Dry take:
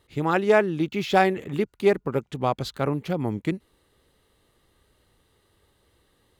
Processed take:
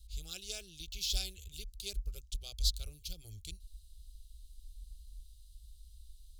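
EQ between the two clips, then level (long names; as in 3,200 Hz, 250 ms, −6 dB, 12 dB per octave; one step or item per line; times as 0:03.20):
inverse Chebyshev band-stop filter 120–2,000 Hz, stop band 50 dB
bass and treble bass +8 dB, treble −11 dB
+15.5 dB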